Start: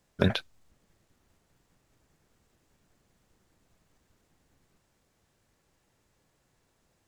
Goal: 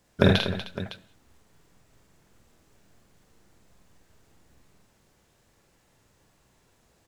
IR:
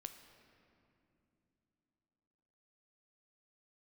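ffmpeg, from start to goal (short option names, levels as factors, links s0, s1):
-filter_complex "[0:a]aecho=1:1:47|77|241|308|559:0.708|0.398|0.282|0.15|0.2,asplit=2[s0][s1];[1:a]atrim=start_sample=2205,afade=t=out:st=0.26:d=0.01,atrim=end_sample=11907[s2];[s1][s2]afir=irnorm=-1:irlink=0,volume=1.26[s3];[s0][s3]amix=inputs=2:normalize=0"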